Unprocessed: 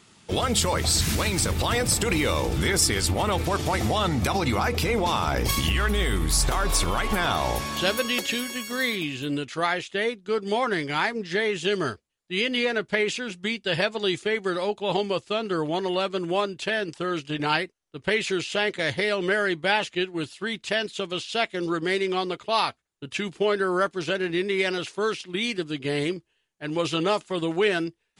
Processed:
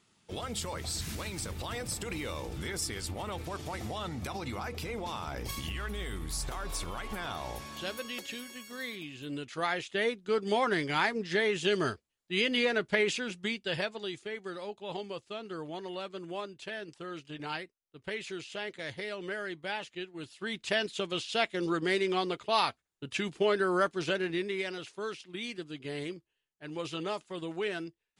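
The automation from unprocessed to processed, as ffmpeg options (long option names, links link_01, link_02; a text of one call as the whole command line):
ffmpeg -i in.wav -af "volume=6dB,afade=type=in:start_time=9.12:duration=0.99:silence=0.316228,afade=type=out:start_time=13.19:duration=0.92:silence=0.316228,afade=type=in:start_time=20.18:duration=0.51:silence=0.334965,afade=type=out:start_time=24.08:duration=0.6:silence=0.421697" out.wav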